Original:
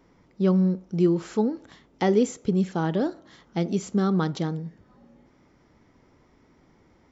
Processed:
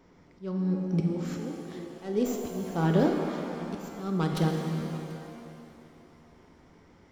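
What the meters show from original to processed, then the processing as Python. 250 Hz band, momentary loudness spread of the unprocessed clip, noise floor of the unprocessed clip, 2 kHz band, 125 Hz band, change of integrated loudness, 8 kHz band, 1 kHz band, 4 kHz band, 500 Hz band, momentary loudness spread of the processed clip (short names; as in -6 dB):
-5.0 dB, 8 LU, -61 dBFS, -2.5 dB, -2.5 dB, -5.0 dB, n/a, -3.0 dB, -2.5 dB, -5.0 dB, 16 LU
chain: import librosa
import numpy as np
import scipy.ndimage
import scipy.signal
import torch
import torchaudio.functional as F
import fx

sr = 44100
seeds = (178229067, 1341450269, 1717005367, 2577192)

p1 = fx.tracing_dist(x, sr, depth_ms=0.087)
p2 = p1 + fx.echo_single(p1, sr, ms=737, db=-22.5, dry=0)
p3 = fx.auto_swell(p2, sr, attack_ms=455.0)
y = fx.rev_shimmer(p3, sr, seeds[0], rt60_s=2.5, semitones=7, shimmer_db=-8, drr_db=2.0)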